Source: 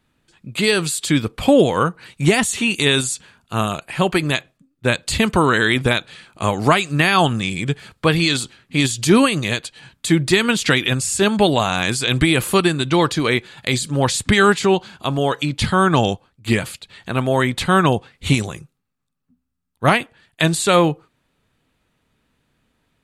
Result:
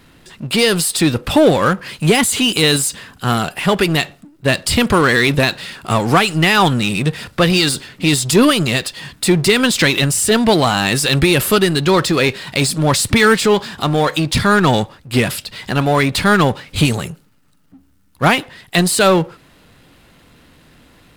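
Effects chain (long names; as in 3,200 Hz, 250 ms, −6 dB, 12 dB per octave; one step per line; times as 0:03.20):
wrong playback speed 44.1 kHz file played as 48 kHz
power curve on the samples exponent 0.7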